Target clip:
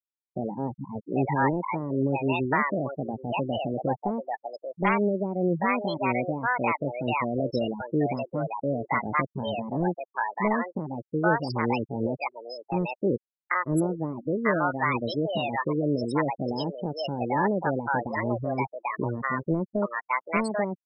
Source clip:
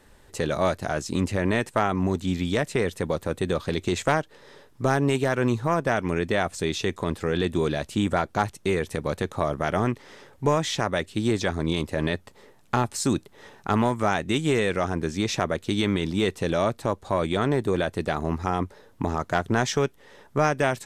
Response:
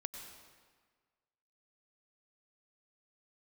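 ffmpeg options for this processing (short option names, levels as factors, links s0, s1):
-filter_complex "[0:a]asetrate=64194,aresample=44100,atempo=0.686977,afftfilt=real='re*gte(hypot(re,im),0.112)':imag='im*gte(hypot(re,im),0.112)':win_size=1024:overlap=0.75,acrossover=split=620[s0][s1];[s1]adelay=790[s2];[s0][s2]amix=inputs=2:normalize=0"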